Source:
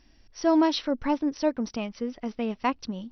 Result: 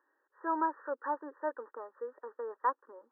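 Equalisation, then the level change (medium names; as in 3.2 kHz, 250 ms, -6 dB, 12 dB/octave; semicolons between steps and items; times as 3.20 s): high-pass 500 Hz 24 dB/octave; brick-wall FIR low-pass 1.9 kHz; static phaser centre 690 Hz, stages 6; 0.0 dB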